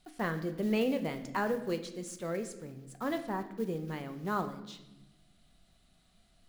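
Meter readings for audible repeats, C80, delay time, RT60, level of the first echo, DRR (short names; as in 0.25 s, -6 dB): none, 13.5 dB, none, 1.0 s, none, 7.5 dB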